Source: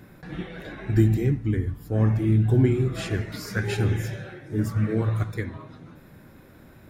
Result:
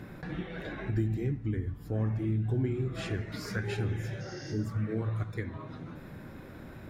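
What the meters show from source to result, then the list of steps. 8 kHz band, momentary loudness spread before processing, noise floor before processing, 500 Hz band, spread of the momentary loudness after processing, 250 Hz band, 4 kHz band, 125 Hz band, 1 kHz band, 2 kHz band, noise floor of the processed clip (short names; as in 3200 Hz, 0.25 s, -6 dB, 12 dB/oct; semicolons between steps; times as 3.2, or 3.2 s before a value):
-8.5 dB, 16 LU, -50 dBFS, -8.0 dB, 14 LU, -8.5 dB, -6.0 dB, -8.5 dB, -6.0 dB, -6.0 dB, -47 dBFS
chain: spectral repair 4.23–4.63, 1500–6800 Hz after; high shelf 7100 Hz -10.5 dB; compressor 2:1, threshold -43 dBFS, peak gain reduction 16 dB; gain +4 dB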